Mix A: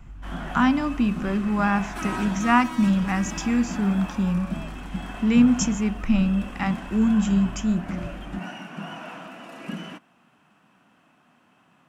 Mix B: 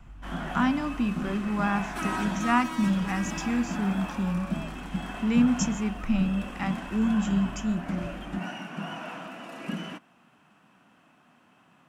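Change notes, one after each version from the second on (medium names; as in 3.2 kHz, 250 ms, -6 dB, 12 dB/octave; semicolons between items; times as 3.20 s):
speech -5.0 dB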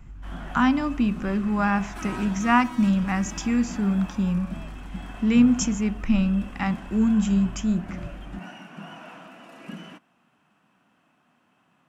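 speech +4.5 dB; background -5.0 dB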